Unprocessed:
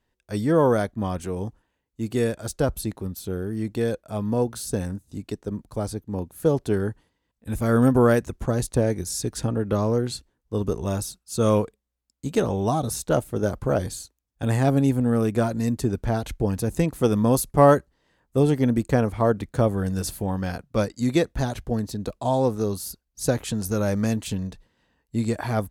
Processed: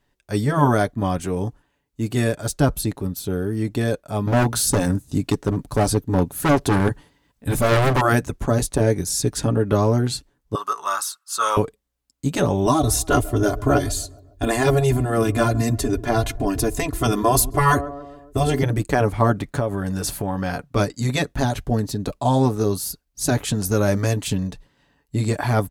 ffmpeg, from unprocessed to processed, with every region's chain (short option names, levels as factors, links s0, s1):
-filter_complex "[0:a]asettb=1/sr,asplit=3[s0][s1][s2];[s0]atrim=end=4.274[s3];[s1]atrim=start=4.27:end=8.01,asetpts=PTS-STARTPTS,afade=t=in:d=0.004:c=qsin,afade=t=out:st=3.736:d=0.004:c=qsin,volume=15.8,asoftclip=hard,volume=0.0631,acontrast=79[s4];[s2]atrim=start=8.006[s5];[s3][s4]acrossfade=d=0.004:c1=hsin:c2=qsin[s6];[s6][s5]acrossfade=d=0.004:c1=qsin:c2=hsin,asettb=1/sr,asplit=3[s7][s8][s9];[s7]atrim=end=10.554[s10];[s8]atrim=start=10.55:end=11.57,asetpts=PTS-STARTPTS,afade=t=in:d=0.004:c=qsin,afade=t=out:st=1.016:d=0.004:c=qsin,highpass=f=1200:t=q:w=6.6,bandreject=f=2400:w=12[s11];[s9]atrim=start=11.566[s12];[s10][s11]acrossfade=d=0.004:c1=hsin:c2=qsin[s13];[s13][s12]acrossfade=d=0.004:c1=qsin:c2=hsin,asettb=1/sr,asplit=3[s14][s15][s16];[s14]atrim=end=12.664[s17];[s15]atrim=start=12.66:end=18.63,asetpts=PTS-STARTPTS,afade=t=in:d=0.004:c=qsin,afade=t=out:st=5.966:d=0.004:c=qsin,lowshelf=f=110:t=q:w=1.5:g=8.5,aecho=1:1:2.9:0.98,atrim=end_sample=263277,asplit=2[s18][s19];[s19]adelay=139,lowpass=f=1600:p=1,volume=0.0708,asplit=2[s20][s21];[s21]adelay=139,lowpass=f=1600:p=1,volume=0.53,asplit=2[s22][s23];[s23]adelay=139,lowpass=f=1600:p=1,volume=0.53,asplit=2[s24][s25];[s25]adelay=139,lowpass=f=1600:p=1,volume=0.53[s26];[s18][s20][s22][s24][s26]amix=inputs=5:normalize=0,atrim=end_sample=263277[s27];[s16]atrim=start=18.626[s28];[s17][s27]acrossfade=d=0.004:c1=hsin:c2=qsin[s29];[s29][s28]acrossfade=d=0.004:c1=qsin:c2=hsin,asettb=1/sr,asplit=3[s30][s31][s32];[s30]atrim=end=19.414[s33];[s31]atrim=start=19.41:end=20.76,asetpts=PTS-STARTPTS,afade=t=in:d=0.004:c=qsin,afade=t=out:st=1.346:d=0.004:c=qsin,equalizer=f=1100:w=0.4:g=4.5,acompressor=threshold=0.0501:ratio=4:attack=3.2:release=140:knee=1:detection=peak[s34];[s32]atrim=start=20.756[s35];[s33][s34]acrossfade=d=0.004:c1=hsin:c2=qsin[s36];[s36][s35]acrossfade=d=0.004:c1=qsin:c2=hsin,afftfilt=real='re*lt(hypot(re,im),0.708)':imag='im*lt(hypot(re,im),0.708)':win_size=1024:overlap=0.75,bandreject=f=480:w=12,aecho=1:1:7:0.35,volume=1.88"